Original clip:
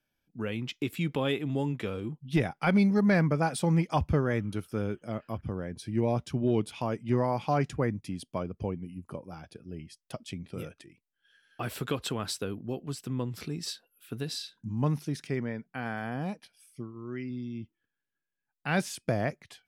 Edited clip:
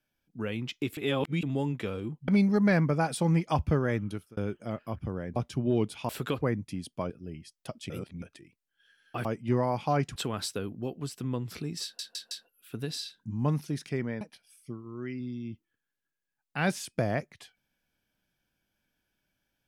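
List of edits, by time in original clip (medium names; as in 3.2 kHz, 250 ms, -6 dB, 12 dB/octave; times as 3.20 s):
0.97–1.43 s: reverse
2.28–2.70 s: delete
4.49–4.79 s: fade out linear
5.78–6.13 s: delete
6.86–7.77 s: swap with 11.70–12.02 s
8.46–9.55 s: delete
10.35–10.67 s: reverse
13.69 s: stutter 0.16 s, 4 plays
15.59–16.31 s: delete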